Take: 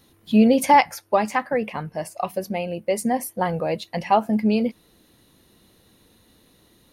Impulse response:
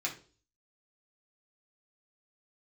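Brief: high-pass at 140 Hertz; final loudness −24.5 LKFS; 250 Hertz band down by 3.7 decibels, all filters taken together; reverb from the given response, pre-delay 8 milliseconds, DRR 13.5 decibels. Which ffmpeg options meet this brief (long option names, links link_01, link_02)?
-filter_complex "[0:a]highpass=140,equalizer=frequency=250:width_type=o:gain=-3.5,asplit=2[link_01][link_02];[1:a]atrim=start_sample=2205,adelay=8[link_03];[link_02][link_03]afir=irnorm=-1:irlink=0,volume=-17.5dB[link_04];[link_01][link_04]amix=inputs=2:normalize=0,volume=-1.5dB"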